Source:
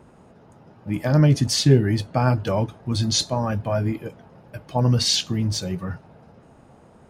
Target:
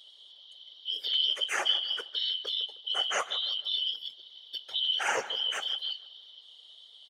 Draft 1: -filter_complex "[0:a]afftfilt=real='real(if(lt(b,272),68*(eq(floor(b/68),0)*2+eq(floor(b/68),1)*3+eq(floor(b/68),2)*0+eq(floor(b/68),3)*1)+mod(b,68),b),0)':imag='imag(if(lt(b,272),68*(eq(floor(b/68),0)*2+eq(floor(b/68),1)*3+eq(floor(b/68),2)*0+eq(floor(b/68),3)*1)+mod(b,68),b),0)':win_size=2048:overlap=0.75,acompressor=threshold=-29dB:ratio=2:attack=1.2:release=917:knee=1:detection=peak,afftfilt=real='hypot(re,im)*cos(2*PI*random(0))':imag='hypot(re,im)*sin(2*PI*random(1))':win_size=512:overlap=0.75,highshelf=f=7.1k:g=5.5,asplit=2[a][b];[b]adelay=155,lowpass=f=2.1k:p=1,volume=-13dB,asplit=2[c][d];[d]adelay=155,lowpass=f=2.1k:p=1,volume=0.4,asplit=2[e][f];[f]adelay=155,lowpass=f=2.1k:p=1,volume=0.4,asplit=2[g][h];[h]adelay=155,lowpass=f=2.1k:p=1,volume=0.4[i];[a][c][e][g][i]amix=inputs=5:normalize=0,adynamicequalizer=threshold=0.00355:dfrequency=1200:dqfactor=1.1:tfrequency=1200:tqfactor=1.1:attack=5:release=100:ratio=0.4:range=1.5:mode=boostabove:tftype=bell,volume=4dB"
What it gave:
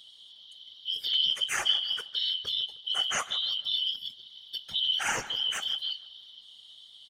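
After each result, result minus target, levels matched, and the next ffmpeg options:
500 Hz band -7.5 dB; 8000 Hz band +3.5 dB
-filter_complex "[0:a]afftfilt=real='real(if(lt(b,272),68*(eq(floor(b/68),0)*2+eq(floor(b/68),1)*3+eq(floor(b/68),2)*0+eq(floor(b/68),3)*1)+mod(b,68),b),0)':imag='imag(if(lt(b,272),68*(eq(floor(b/68),0)*2+eq(floor(b/68),1)*3+eq(floor(b/68),2)*0+eq(floor(b/68),3)*1)+mod(b,68),b),0)':win_size=2048:overlap=0.75,acompressor=threshold=-29dB:ratio=2:attack=1.2:release=917:knee=1:detection=peak,highpass=f=480:t=q:w=2.4,afftfilt=real='hypot(re,im)*cos(2*PI*random(0))':imag='hypot(re,im)*sin(2*PI*random(1))':win_size=512:overlap=0.75,highshelf=f=7.1k:g=5.5,asplit=2[a][b];[b]adelay=155,lowpass=f=2.1k:p=1,volume=-13dB,asplit=2[c][d];[d]adelay=155,lowpass=f=2.1k:p=1,volume=0.4,asplit=2[e][f];[f]adelay=155,lowpass=f=2.1k:p=1,volume=0.4,asplit=2[g][h];[h]adelay=155,lowpass=f=2.1k:p=1,volume=0.4[i];[a][c][e][g][i]amix=inputs=5:normalize=0,adynamicequalizer=threshold=0.00355:dfrequency=1200:dqfactor=1.1:tfrequency=1200:tqfactor=1.1:attack=5:release=100:ratio=0.4:range=1.5:mode=boostabove:tftype=bell,volume=4dB"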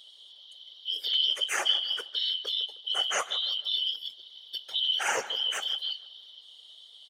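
8000 Hz band +3.5 dB
-filter_complex "[0:a]afftfilt=real='real(if(lt(b,272),68*(eq(floor(b/68),0)*2+eq(floor(b/68),1)*3+eq(floor(b/68),2)*0+eq(floor(b/68),3)*1)+mod(b,68),b),0)':imag='imag(if(lt(b,272),68*(eq(floor(b/68),0)*2+eq(floor(b/68),1)*3+eq(floor(b/68),2)*0+eq(floor(b/68),3)*1)+mod(b,68),b),0)':win_size=2048:overlap=0.75,acompressor=threshold=-29dB:ratio=2:attack=1.2:release=917:knee=1:detection=peak,highpass=f=480:t=q:w=2.4,afftfilt=real='hypot(re,im)*cos(2*PI*random(0))':imag='hypot(re,im)*sin(2*PI*random(1))':win_size=512:overlap=0.75,highshelf=f=7.1k:g=-4.5,asplit=2[a][b];[b]adelay=155,lowpass=f=2.1k:p=1,volume=-13dB,asplit=2[c][d];[d]adelay=155,lowpass=f=2.1k:p=1,volume=0.4,asplit=2[e][f];[f]adelay=155,lowpass=f=2.1k:p=1,volume=0.4,asplit=2[g][h];[h]adelay=155,lowpass=f=2.1k:p=1,volume=0.4[i];[a][c][e][g][i]amix=inputs=5:normalize=0,adynamicequalizer=threshold=0.00355:dfrequency=1200:dqfactor=1.1:tfrequency=1200:tqfactor=1.1:attack=5:release=100:ratio=0.4:range=1.5:mode=boostabove:tftype=bell,volume=4dB"

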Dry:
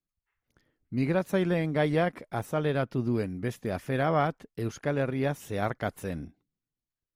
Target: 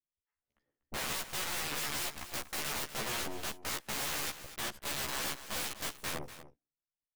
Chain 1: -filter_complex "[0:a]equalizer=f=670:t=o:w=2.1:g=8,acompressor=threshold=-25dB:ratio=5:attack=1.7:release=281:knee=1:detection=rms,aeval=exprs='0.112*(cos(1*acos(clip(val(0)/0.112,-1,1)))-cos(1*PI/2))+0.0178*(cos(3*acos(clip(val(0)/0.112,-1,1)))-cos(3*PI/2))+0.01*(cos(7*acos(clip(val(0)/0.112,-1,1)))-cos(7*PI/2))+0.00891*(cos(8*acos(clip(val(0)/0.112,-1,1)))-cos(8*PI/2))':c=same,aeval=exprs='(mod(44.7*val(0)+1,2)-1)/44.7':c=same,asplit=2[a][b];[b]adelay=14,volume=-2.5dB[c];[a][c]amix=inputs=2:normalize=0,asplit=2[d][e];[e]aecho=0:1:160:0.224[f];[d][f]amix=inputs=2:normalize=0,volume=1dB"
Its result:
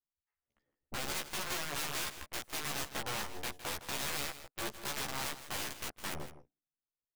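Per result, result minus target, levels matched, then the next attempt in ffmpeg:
echo 82 ms early; compressor: peak gain reduction +5 dB
-filter_complex "[0:a]equalizer=f=670:t=o:w=2.1:g=8,acompressor=threshold=-25dB:ratio=5:attack=1.7:release=281:knee=1:detection=rms,aeval=exprs='0.112*(cos(1*acos(clip(val(0)/0.112,-1,1)))-cos(1*PI/2))+0.0178*(cos(3*acos(clip(val(0)/0.112,-1,1)))-cos(3*PI/2))+0.01*(cos(7*acos(clip(val(0)/0.112,-1,1)))-cos(7*PI/2))+0.00891*(cos(8*acos(clip(val(0)/0.112,-1,1)))-cos(8*PI/2))':c=same,aeval=exprs='(mod(44.7*val(0)+1,2)-1)/44.7':c=same,asplit=2[a][b];[b]adelay=14,volume=-2.5dB[c];[a][c]amix=inputs=2:normalize=0,asplit=2[d][e];[e]aecho=0:1:242:0.224[f];[d][f]amix=inputs=2:normalize=0,volume=1dB"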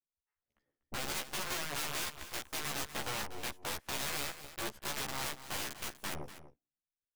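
compressor: peak gain reduction +5 dB
-filter_complex "[0:a]equalizer=f=670:t=o:w=2.1:g=8,acompressor=threshold=-18.5dB:ratio=5:attack=1.7:release=281:knee=1:detection=rms,aeval=exprs='0.112*(cos(1*acos(clip(val(0)/0.112,-1,1)))-cos(1*PI/2))+0.0178*(cos(3*acos(clip(val(0)/0.112,-1,1)))-cos(3*PI/2))+0.01*(cos(7*acos(clip(val(0)/0.112,-1,1)))-cos(7*PI/2))+0.00891*(cos(8*acos(clip(val(0)/0.112,-1,1)))-cos(8*PI/2))':c=same,aeval=exprs='(mod(44.7*val(0)+1,2)-1)/44.7':c=same,asplit=2[a][b];[b]adelay=14,volume=-2.5dB[c];[a][c]amix=inputs=2:normalize=0,asplit=2[d][e];[e]aecho=0:1:242:0.224[f];[d][f]amix=inputs=2:normalize=0,volume=1dB"

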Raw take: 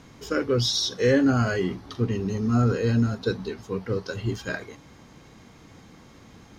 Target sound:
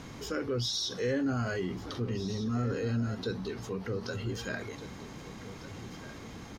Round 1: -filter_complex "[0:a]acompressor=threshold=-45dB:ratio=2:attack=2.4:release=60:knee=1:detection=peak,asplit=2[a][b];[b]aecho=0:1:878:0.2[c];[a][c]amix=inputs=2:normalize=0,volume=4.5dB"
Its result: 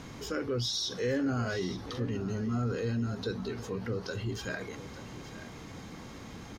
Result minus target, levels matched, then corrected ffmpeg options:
echo 0.673 s early
-filter_complex "[0:a]acompressor=threshold=-45dB:ratio=2:attack=2.4:release=60:knee=1:detection=peak,asplit=2[a][b];[b]aecho=0:1:1551:0.2[c];[a][c]amix=inputs=2:normalize=0,volume=4.5dB"

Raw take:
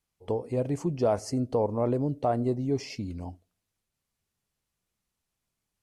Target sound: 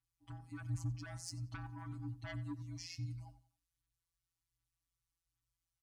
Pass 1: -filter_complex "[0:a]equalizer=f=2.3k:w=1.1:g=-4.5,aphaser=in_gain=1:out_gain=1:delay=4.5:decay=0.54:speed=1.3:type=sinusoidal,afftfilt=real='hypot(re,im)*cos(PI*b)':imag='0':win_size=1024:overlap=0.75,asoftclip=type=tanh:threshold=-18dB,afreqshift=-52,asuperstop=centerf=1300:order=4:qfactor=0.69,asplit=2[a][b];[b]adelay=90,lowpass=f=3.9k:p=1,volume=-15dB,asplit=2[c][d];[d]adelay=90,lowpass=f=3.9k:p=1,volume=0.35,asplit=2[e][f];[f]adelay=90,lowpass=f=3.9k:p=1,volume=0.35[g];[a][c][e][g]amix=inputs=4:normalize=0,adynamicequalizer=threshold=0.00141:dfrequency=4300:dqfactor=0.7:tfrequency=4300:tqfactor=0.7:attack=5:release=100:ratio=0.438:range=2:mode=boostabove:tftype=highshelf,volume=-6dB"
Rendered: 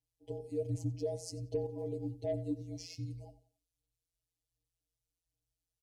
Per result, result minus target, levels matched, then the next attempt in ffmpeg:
500 Hz band +17.5 dB; soft clip: distortion -6 dB
-filter_complex "[0:a]equalizer=f=2.3k:w=1.1:g=-4.5,aphaser=in_gain=1:out_gain=1:delay=4.5:decay=0.54:speed=1.3:type=sinusoidal,afftfilt=real='hypot(re,im)*cos(PI*b)':imag='0':win_size=1024:overlap=0.75,asoftclip=type=tanh:threshold=-18dB,afreqshift=-52,asuperstop=centerf=490:order=4:qfactor=0.69,asplit=2[a][b];[b]adelay=90,lowpass=f=3.9k:p=1,volume=-15dB,asplit=2[c][d];[d]adelay=90,lowpass=f=3.9k:p=1,volume=0.35,asplit=2[e][f];[f]adelay=90,lowpass=f=3.9k:p=1,volume=0.35[g];[a][c][e][g]amix=inputs=4:normalize=0,adynamicequalizer=threshold=0.00141:dfrequency=4300:dqfactor=0.7:tfrequency=4300:tqfactor=0.7:attack=5:release=100:ratio=0.438:range=2:mode=boostabove:tftype=highshelf,volume=-6dB"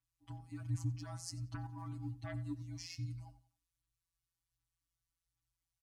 soft clip: distortion -6 dB
-filter_complex "[0:a]equalizer=f=2.3k:w=1.1:g=-4.5,aphaser=in_gain=1:out_gain=1:delay=4.5:decay=0.54:speed=1.3:type=sinusoidal,afftfilt=real='hypot(re,im)*cos(PI*b)':imag='0':win_size=1024:overlap=0.75,asoftclip=type=tanh:threshold=-24.5dB,afreqshift=-52,asuperstop=centerf=490:order=4:qfactor=0.69,asplit=2[a][b];[b]adelay=90,lowpass=f=3.9k:p=1,volume=-15dB,asplit=2[c][d];[d]adelay=90,lowpass=f=3.9k:p=1,volume=0.35,asplit=2[e][f];[f]adelay=90,lowpass=f=3.9k:p=1,volume=0.35[g];[a][c][e][g]amix=inputs=4:normalize=0,adynamicequalizer=threshold=0.00141:dfrequency=4300:dqfactor=0.7:tfrequency=4300:tqfactor=0.7:attack=5:release=100:ratio=0.438:range=2:mode=boostabove:tftype=highshelf,volume=-6dB"

